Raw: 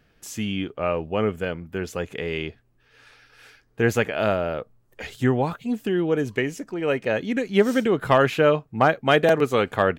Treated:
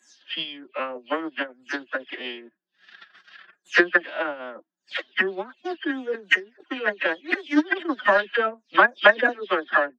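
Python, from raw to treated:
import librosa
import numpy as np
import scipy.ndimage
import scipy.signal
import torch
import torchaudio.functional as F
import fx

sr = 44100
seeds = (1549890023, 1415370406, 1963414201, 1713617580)

y = fx.spec_delay(x, sr, highs='early', ms=257)
y = fx.peak_eq(y, sr, hz=1700.0, db=13.0, octaves=0.51)
y = fx.transient(y, sr, attack_db=12, sustain_db=-10)
y = fx.cabinet(y, sr, low_hz=180.0, low_slope=24, high_hz=4800.0, hz=(190.0, 310.0, 840.0, 2200.0, 3300.0), db=(-4, -7, -4, -10, 10))
y = fx.pitch_keep_formants(y, sr, semitones=7.0)
y = y * librosa.db_to_amplitude(-6.5)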